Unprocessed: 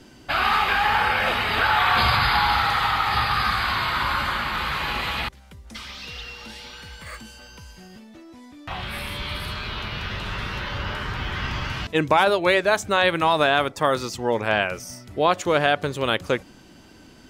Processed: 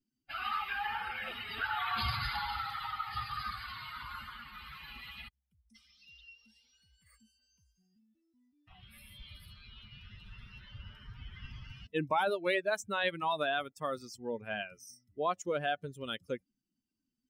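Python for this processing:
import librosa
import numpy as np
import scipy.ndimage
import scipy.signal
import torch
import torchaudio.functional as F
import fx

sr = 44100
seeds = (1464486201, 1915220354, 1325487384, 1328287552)

y = fx.bin_expand(x, sr, power=2.0)
y = fx.peak_eq(y, sr, hz=360.0, db=7.5, octaves=0.63, at=(0.75, 2.4))
y = F.gain(torch.from_numpy(y), -9.0).numpy()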